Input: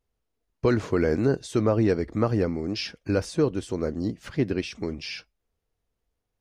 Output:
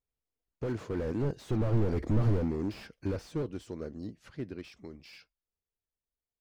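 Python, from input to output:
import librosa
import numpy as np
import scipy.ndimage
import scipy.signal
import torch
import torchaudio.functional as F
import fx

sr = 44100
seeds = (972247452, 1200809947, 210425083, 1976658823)

y = fx.doppler_pass(x, sr, speed_mps=10, closest_m=2.9, pass_at_s=2.1)
y = fx.slew_limit(y, sr, full_power_hz=8.0)
y = y * librosa.db_to_amplitude(4.0)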